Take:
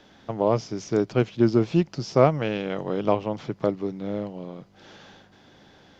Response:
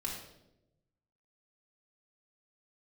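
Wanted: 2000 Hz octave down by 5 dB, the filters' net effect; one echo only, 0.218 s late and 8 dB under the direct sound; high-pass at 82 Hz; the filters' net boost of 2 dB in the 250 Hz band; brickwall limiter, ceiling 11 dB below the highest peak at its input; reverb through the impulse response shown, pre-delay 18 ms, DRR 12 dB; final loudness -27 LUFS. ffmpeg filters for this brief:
-filter_complex "[0:a]highpass=82,equalizer=f=250:t=o:g=3,equalizer=f=2k:t=o:g=-7,alimiter=limit=-15.5dB:level=0:latency=1,aecho=1:1:218:0.398,asplit=2[a][b];[1:a]atrim=start_sample=2205,adelay=18[c];[b][c]afir=irnorm=-1:irlink=0,volume=-13.5dB[d];[a][d]amix=inputs=2:normalize=0,volume=1dB"

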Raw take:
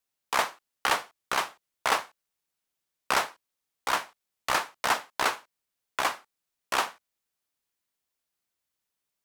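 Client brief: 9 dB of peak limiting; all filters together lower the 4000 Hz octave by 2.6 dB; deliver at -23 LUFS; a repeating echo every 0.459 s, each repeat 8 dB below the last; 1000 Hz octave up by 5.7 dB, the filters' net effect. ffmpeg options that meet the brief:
-af "equalizer=f=1k:t=o:g=7,equalizer=f=4k:t=o:g=-4,alimiter=limit=-15.5dB:level=0:latency=1,aecho=1:1:459|918|1377|1836|2295:0.398|0.159|0.0637|0.0255|0.0102,volume=8.5dB"

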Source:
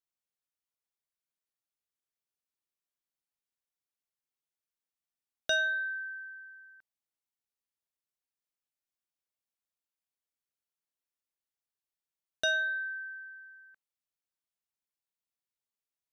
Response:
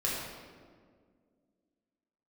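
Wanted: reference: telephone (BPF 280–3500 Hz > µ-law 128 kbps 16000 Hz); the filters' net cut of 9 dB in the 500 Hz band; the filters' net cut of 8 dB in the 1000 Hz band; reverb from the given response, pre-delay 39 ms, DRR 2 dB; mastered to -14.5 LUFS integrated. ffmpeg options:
-filter_complex "[0:a]equalizer=f=500:t=o:g=-8.5,equalizer=f=1k:t=o:g=-8.5,asplit=2[a][b];[1:a]atrim=start_sample=2205,adelay=39[c];[b][c]afir=irnorm=-1:irlink=0,volume=-9dB[d];[a][d]amix=inputs=2:normalize=0,highpass=280,lowpass=3.5k,volume=21dB" -ar 16000 -c:a pcm_mulaw

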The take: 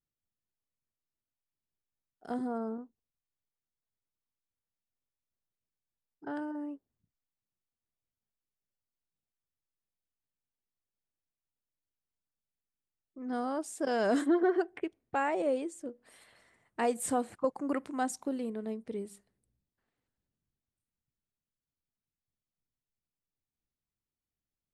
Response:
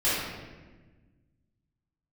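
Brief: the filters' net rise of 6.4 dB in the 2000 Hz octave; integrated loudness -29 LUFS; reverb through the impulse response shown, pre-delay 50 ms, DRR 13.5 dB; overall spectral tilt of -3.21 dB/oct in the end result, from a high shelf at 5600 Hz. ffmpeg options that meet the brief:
-filter_complex "[0:a]equalizer=f=2k:t=o:g=8,highshelf=f=5.6k:g=6,asplit=2[a][b];[1:a]atrim=start_sample=2205,adelay=50[c];[b][c]afir=irnorm=-1:irlink=0,volume=-27dB[d];[a][d]amix=inputs=2:normalize=0,volume=3.5dB"

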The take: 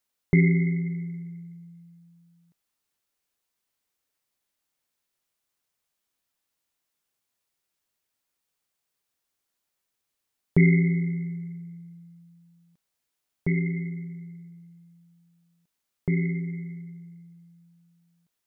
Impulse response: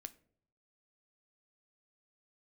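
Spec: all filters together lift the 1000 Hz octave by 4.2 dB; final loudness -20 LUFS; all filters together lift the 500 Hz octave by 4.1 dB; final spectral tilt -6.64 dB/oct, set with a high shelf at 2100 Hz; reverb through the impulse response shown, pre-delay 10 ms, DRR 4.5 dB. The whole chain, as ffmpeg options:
-filter_complex "[0:a]equalizer=f=500:t=o:g=6,equalizer=f=1k:t=o:g=4.5,highshelf=f=2.1k:g=-7,asplit=2[a][b];[1:a]atrim=start_sample=2205,adelay=10[c];[b][c]afir=irnorm=-1:irlink=0,volume=1dB[d];[a][d]amix=inputs=2:normalize=0,volume=4dB"

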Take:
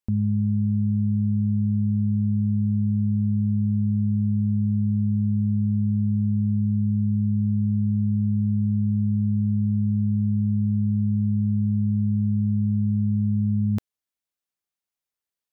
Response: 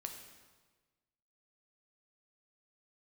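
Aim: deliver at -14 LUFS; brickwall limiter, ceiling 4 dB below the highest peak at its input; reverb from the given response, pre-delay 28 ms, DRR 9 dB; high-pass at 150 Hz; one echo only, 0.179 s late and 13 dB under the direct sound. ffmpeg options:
-filter_complex "[0:a]highpass=150,alimiter=level_in=0.5dB:limit=-24dB:level=0:latency=1,volume=-0.5dB,aecho=1:1:179:0.224,asplit=2[a][b];[1:a]atrim=start_sample=2205,adelay=28[c];[b][c]afir=irnorm=-1:irlink=0,volume=-6.5dB[d];[a][d]amix=inputs=2:normalize=0,volume=15.5dB"

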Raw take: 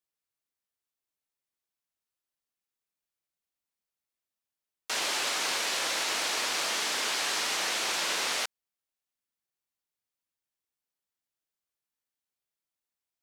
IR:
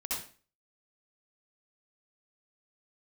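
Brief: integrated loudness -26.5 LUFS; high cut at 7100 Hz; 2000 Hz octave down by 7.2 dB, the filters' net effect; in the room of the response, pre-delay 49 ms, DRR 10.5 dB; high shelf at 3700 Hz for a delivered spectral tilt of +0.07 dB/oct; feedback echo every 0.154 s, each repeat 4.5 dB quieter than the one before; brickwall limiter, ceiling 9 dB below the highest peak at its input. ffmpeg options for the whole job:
-filter_complex "[0:a]lowpass=7.1k,equalizer=f=2k:t=o:g=-7.5,highshelf=f=3.7k:g=-6,alimiter=level_in=7.5dB:limit=-24dB:level=0:latency=1,volume=-7.5dB,aecho=1:1:154|308|462|616|770|924|1078|1232|1386:0.596|0.357|0.214|0.129|0.0772|0.0463|0.0278|0.0167|0.01,asplit=2[a][b];[1:a]atrim=start_sample=2205,adelay=49[c];[b][c]afir=irnorm=-1:irlink=0,volume=-14dB[d];[a][d]amix=inputs=2:normalize=0,volume=10.5dB"

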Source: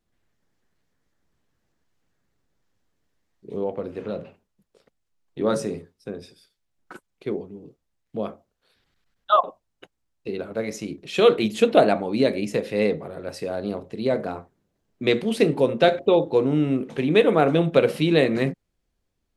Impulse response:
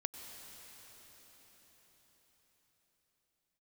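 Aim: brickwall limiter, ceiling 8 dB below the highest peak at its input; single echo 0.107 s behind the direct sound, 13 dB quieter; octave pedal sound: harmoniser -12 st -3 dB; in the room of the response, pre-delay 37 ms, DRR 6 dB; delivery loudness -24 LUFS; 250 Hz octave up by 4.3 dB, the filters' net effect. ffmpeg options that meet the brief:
-filter_complex "[0:a]equalizer=f=250:t=o:g=5.5,alimiter=limit=-9.5dB:level=0:latency=1,aecho=1:1:107:0.224,asplit=2[a][b];[1:a]atrim=start_sample=2205,adelay=37[c];[b][c]afir=irnorm=-1:irlink=0,volume=-5.5dB[d];[a][d]amix=inputs=2:normalize=0,asplit=2[e][f];[f]asetrate=22050,aresample=44100,atempo=2,volume=-3dB[g];[e][g]amix=inputs=2:normalize=0,volume=-3.5dB"

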